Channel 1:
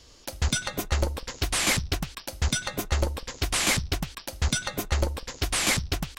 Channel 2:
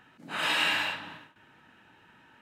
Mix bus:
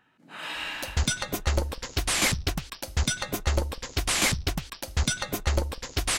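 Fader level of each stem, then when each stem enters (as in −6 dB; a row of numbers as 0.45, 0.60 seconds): 0.0, −7.5 decibels; 0.55, 0.00 seconds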